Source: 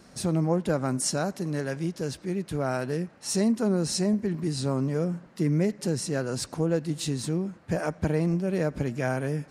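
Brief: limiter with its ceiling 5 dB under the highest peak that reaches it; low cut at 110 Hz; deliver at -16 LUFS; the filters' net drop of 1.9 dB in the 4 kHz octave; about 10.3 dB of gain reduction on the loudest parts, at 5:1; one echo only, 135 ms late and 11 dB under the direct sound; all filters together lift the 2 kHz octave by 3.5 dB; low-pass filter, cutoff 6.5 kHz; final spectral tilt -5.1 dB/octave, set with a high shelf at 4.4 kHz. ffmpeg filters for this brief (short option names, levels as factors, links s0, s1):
-af "highpass=110,lowpass=6500,equalizer=f=2000:t=o:g=5,equalizer=f=4000:t=o:g=-7.5,highshelf=f=4400:g=7,acompressor=threshold=0.0251:ratio=5,alimiter=level_in=1.33:limit=0.0631:level=0:latency=1,volume=0.75,aecho=1:1:135:0.282,volume=10.6"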